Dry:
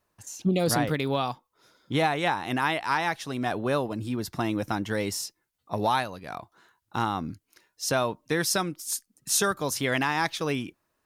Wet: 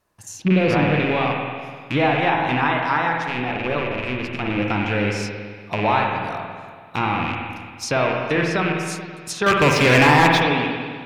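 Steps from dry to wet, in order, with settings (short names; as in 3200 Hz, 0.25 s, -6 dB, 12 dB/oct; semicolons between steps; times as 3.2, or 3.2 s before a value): rattling part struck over -37 dBFS, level -19 dBFS; treble ducked by the level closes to 2700 Hz, closed at -23.5 dBFS; 3.12–4.5 AM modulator 130 Hz, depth 70%; 9.46–10.41 sample leveller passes 3; reverb RT60 1.8 s, pre-delay 48 ms, DRR 0.5 dB; gain +4 dB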